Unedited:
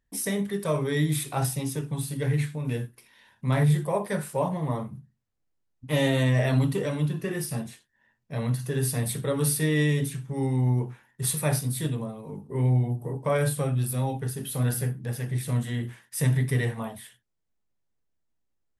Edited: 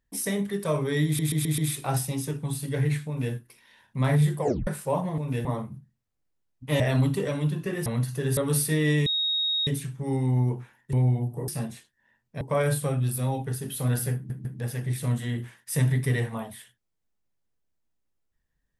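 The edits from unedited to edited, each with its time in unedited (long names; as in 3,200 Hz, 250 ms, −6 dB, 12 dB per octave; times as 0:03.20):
0:01.06: stutter 0.13 s, 5 plays
0:02.55–0:02.82: duplicate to 0:04.66
0:03.89: tape stop 0.26 s
0:06.01–0:06.38: remove
0:07.44–0:08.37: move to 0:13.16
0:08.88–0:09.28: remove
0:09.97: insert tone 3,760 Hz −23 dBFS 0.61 s
0:11.23–0:12.61: remove
0:14.90: stutter 0.15 s, 3 plays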